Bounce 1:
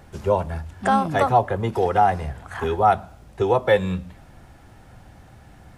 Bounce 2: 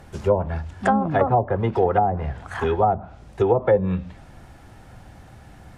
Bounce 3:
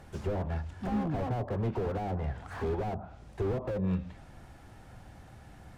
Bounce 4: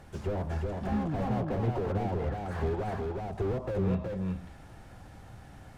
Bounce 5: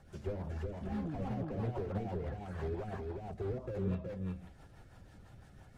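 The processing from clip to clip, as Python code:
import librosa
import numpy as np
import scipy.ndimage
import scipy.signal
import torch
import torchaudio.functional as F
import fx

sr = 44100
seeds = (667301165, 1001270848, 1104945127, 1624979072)

y1 = fx.env_lowpass_down(x, sr, base_hz=580.0, full_db=-14.0)
y1 = F.gain(torch.from_numpy(y1), 2.0).numpy()
y2 = fx.slew_limit(y1, sr, full_power_hz=26.0)
y2 = F.gain(torch.from_numpy(y2), -6.0).numpy()
y3 = y2 + 10.0 ** (-3.0 / 20.0) * np.pad(y2, (int(369 * sr / 1000.0), 0))[:len(y2)]
y4 = fx.spec_quant(y3, sr, step_db=15)
y4 = fx.rotary(y4, sr, hz=6.0)
y4 = F.gain(torch.from_numpy(y4), -5.0).numpy()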